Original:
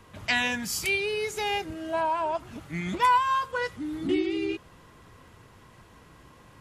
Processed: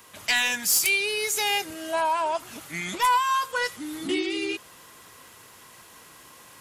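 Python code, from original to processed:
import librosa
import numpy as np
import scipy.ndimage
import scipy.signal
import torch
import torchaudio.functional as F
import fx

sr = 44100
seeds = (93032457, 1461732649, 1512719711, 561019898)

p1 = fx.riaa(x, sr, side='recording')
p2 = fx.rider(p1, sr, range_db=3, speed_s=0.5)
p3 = p1 + (p2 * librosa.db_to_amplitude(-3.0))
p4 = 10.0 ** (-11.5 / 20.0) * np.tanh(p3 / 10.0 ** (-11.5 / 20.0))
y = p4 * librosa.db_to_amplitude(-2.5)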